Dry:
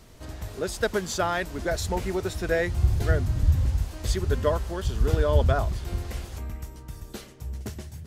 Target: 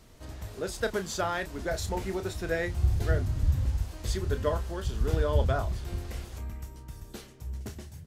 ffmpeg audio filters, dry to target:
-filter_complex "[0:a]asplit=2[a][b];[b]adelay=31,volume=-10dB[c];[a][c]amix=inputs=2:normalize=0,volume=-4.5dB"

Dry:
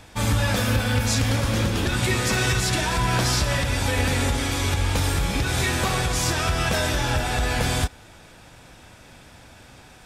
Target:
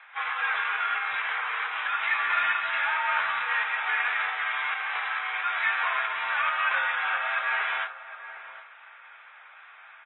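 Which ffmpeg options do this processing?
-filter_complex "[0:a]asplit=2[a][b];[b]asoftclip=type=tanh:threshold=-19.5dB,volume=-9dB[c];[a][c]amix=inputs=2:normalize=0,afreqshift=-82,highpass=f=1.1k:w=0.5412,highpass=f=1.1k:w=1.3066,asplit=2[d][e];[e]adelay=20,volume=-13dB[f];[d][f]amix=inputs=2:normalize=0,acontrast=87,lowpass=f=2.3k:w=0.5412,lowpass=f=2.3k:w=1.3066,asplit=2[g][h];[h]adelay=759,lowpass=f=1.4k:p=1,volume=-11.5dB,asplit=2[i][j];[j]adelay=759,lowpass=f=1.4k:p=1,volume=0.18[k];[i][k]amix=inputs=2:normalize=0[l];[g][l]amix=inputs=2:normalize=0,volume=-5dB" -ar 24000 -c:a aac -b:a 16k

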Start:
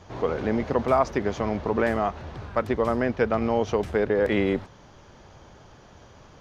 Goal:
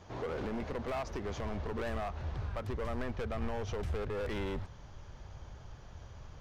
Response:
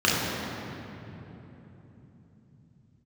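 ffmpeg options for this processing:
-af "alimiter=limit=-17dB:level=0:latency=1:release=139,asoftclip=type=hard:threshold=-27dB,asubboost=boost=5:cutoff=110,volume=-5.5dB"

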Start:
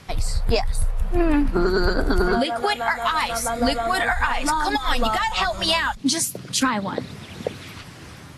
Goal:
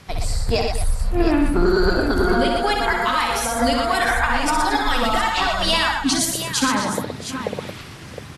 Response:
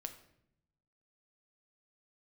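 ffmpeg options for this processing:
-af "aecho=1:1:63|120|222|671|713:0.531|0.562|0.211|0.126|0.335"

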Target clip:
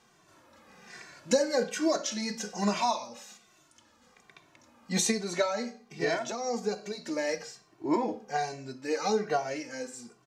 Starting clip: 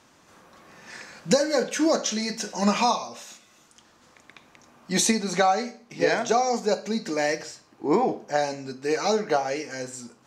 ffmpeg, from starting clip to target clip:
-filter_complex "[0:a]asplit=3[a][b][c];[a]afade=t=out:st=6.17:d=0.02[d];[b]acompressor=threshold=-22dB:ratio=6,afade=t=in:st=6.17:d=0.02,afade=t=out:st=7.26:d=0.02[e];[c]afade=t=in:st=7.26:d=0.02[f];[d][e][f]amix=inputs=3:normalize=0,asplit=2[g][h];[h]adelay=2.1,afreqshift=-1.2[i];[g][i]amix=inputs=2:normalize=1,volume=-2.5dB"

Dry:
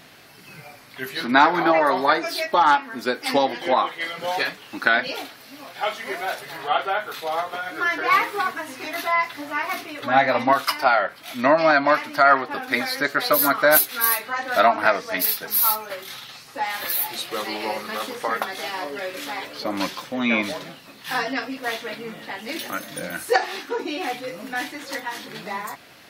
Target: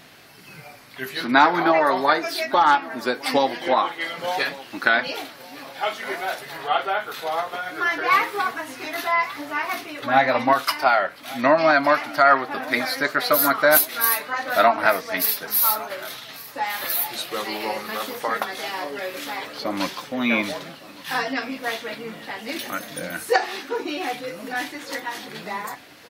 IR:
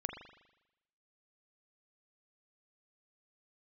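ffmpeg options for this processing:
-af "aecho=1:1:1161|2322|3483|4644:0.1|0.047|0.0221|0.0104"

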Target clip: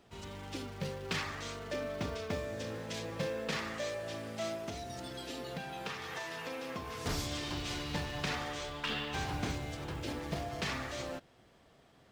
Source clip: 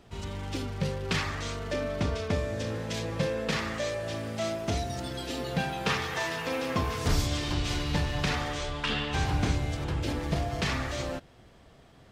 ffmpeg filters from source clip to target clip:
-filter_complex "[0:a]acrusher=bits=8:mode=log:mix=0:aa=0.000001,lowshelf=f=110:g=-10.5,asettb=1/sr,asplit=3[a][b][c];[a]atrim=end=4.654[d];[b]atrim=start=4.65:end=7.06,asetpts=PTS-STARTPTS,afade=t=in:d=0.004:c=qsin,afade=t=out:st=2.406:d=0.004:c=qsin,acompressor=threshold=-32dB:ratio=6[e];[c]atrim=start=7.056[f];[d][e]acrossfade=d=0.004:c1=hsin:c2=qsin[g];[g][f]acrossfade=d=0.004:c1=qsin:c2=hsin,volume=-5.5dB"

